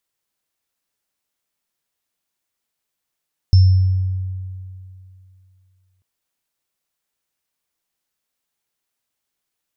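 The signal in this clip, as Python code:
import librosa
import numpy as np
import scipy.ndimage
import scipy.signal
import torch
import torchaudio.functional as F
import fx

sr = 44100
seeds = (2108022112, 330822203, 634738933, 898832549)

y = fx.additive_free(sr, length_s=2.49, hz=93.5, level_db=-5.5, upper_db=(-19.0,), decay_s=2.61, upper_decays_s=(0.73,), upper_hz=(5310.0,))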